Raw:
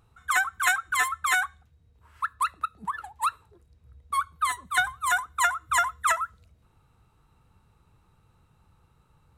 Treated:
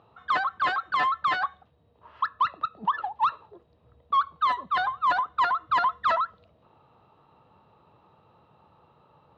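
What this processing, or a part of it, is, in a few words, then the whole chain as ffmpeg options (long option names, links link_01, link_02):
overdrive pedal into a guitar cabinet: -filter_complex "[0:a]asplit=2[link_01][link_02];[link_02]highpass=frequency=720:poles=1,volume=20dB,asoftclip=type=tanh:threshold=-9.5dB[link_03];[link_01][link_03]amix=inputs=2:normalize=0,lowpass=frequency=1400:poles=1,volume=-6dB,highpass=100,equalizer=frequency=600:width_type=q:width=4:gain=6,equalizer=frequency=1500:width_type=q:width=4:gain=-10,equalizer=frequency=2200:width_type=q:width=4:gain=-10,lowpass=frequency=3900:width=0.5412,lowpass=frequency=3900:width=1.3066"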